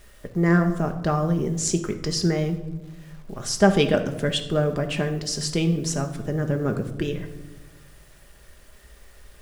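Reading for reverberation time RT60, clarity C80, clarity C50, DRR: 1.1 s, 13.0 dB, 10.5 dB, 5.0 dB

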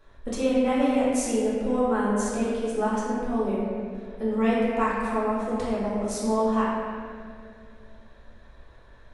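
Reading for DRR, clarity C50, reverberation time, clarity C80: -8.5 dB, -2.5 dB, 2.3 s, 0.0 dB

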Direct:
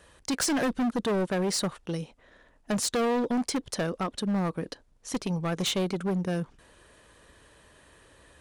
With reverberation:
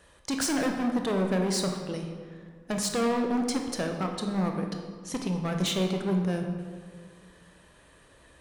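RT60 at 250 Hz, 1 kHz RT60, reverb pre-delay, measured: 2.2 s, 1.7 s, 17 ms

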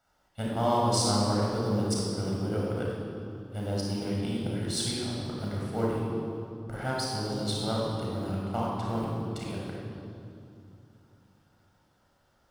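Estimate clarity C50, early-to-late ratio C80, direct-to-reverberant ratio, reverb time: -2.0 dB, 0.5 dB, -4.0 dB, 2.7 s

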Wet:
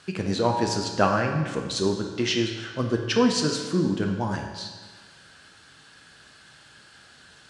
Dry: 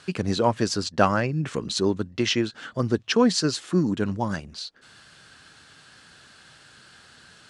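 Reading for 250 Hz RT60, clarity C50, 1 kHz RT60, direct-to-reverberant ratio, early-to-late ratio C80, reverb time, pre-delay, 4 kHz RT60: 1.5 s, 4.5 dB, 1.5 s, 2.0 dB, 6.5 dB, 1.5 s, 7 ms, 1.4 s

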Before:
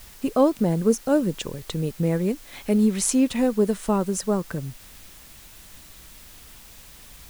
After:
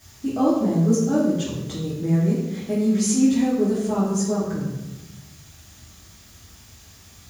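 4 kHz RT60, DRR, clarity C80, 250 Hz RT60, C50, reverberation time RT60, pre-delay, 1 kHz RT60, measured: 0.75 s, -7.0 dB, 4.0 dB, 1.4 s, 1.5 dB, 1.1 s, 3 ms, 0.95 s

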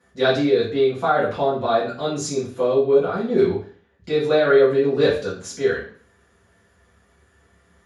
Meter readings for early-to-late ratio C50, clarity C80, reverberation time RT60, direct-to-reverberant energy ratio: 6.0 dB, 10.5 dB, 0.45 s, -10.5 dB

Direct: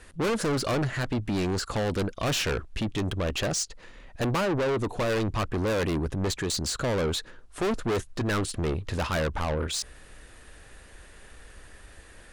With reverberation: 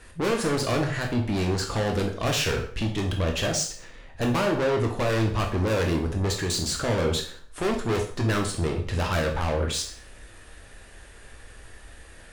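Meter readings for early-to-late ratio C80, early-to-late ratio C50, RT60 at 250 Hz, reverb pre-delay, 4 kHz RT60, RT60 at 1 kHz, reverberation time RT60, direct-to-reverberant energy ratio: 12.5 dB, 8.0 dB, 0.55 s, 6 ms, 0.45 s, 0.50 s, 0.50 s, 1.5 dB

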